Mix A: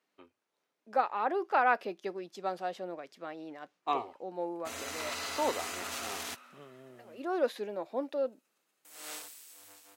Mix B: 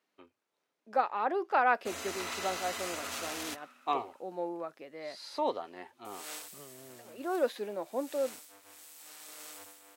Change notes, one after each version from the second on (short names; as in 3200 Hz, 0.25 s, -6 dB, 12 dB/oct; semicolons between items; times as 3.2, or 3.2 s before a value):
background: entry -2.80 s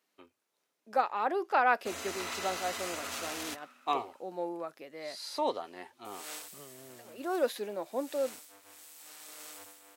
speech: remove LPF 3400 Hz 6 dB/oct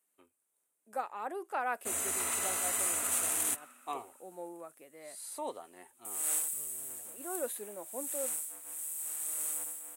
speech -8.0 dB; master: add resonant high shelf 6700 Hz +11 dB, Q 3